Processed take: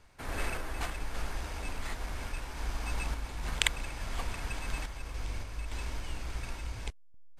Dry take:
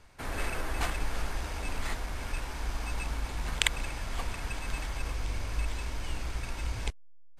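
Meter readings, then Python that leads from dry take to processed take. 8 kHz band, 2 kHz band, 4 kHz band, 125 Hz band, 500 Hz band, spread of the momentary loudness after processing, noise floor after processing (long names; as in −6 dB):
−2.0 dB, −2.0 dB, −1.5 dB, −3.0 dB, −2.5 dB, 8 LU, −51 dBFS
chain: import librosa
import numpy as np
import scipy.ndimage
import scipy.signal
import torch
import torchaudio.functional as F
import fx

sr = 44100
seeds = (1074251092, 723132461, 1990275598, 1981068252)

y = fx.tremolo_random(x, sr, seeds[0], hz=3.5, depth_pct=55)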